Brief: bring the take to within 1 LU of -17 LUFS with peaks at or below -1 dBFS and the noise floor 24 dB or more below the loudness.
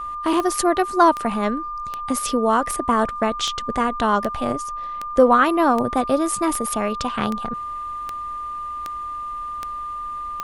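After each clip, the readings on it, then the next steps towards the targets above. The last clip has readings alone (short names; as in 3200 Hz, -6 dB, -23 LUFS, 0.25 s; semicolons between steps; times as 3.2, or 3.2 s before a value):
clicks 14; steady tone 1200 Hz; tone level -27 dBFS; loudness -22.0 LUFS; peak -3.0 dBFS; loudness target -17.0 LUFS
-> de-click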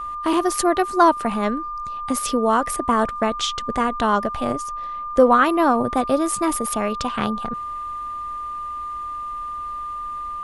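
clicks 0; steady tone 1200 Hz; tone level -27 dBFS
-> notch 1200 Hz, Q 30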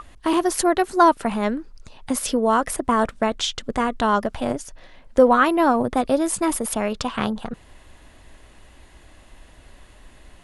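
steady tone none; loudness -21.0 LUFS; peak -3.0 dBFS; loudness target -17.0 LUFS
-> gain +4 dB; limiter -1 dBFS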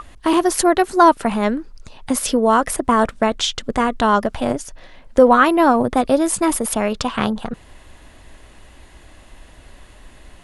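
loudness -17.5 LUFS; peak -1.0 dBFS; noise floor -46 dBFS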